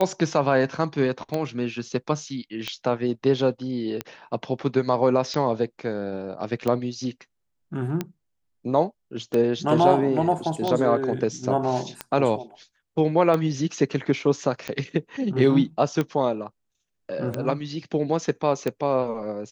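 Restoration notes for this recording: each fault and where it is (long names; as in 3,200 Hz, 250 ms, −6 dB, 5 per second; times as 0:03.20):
scratch tick 45 rpm −13 dBFS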